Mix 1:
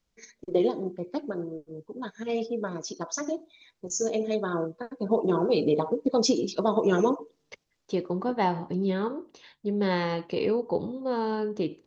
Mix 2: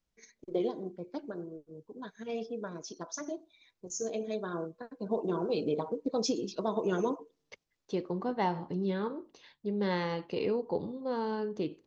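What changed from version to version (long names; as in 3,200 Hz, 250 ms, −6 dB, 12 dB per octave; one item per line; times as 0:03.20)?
first voice −7.5 dB
second voice −5.0 dB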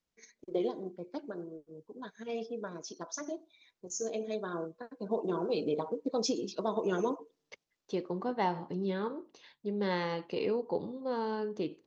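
master: add low-shelf EQ 100 Hz −11.5 dB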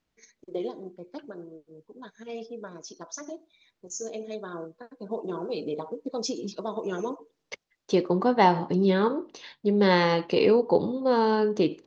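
second voice +11.5 dB
master: add high-shelf EQ 7,000 Hz +5 dB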